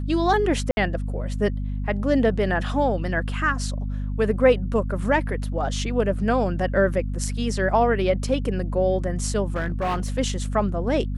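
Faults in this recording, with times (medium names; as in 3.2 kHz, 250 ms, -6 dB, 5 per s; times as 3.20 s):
hum 50 Hz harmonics 5 -27 dBFS
0.71–0.77 s: dropout 61 ms
9.50–10.19 s: clipped -20.5 dBFS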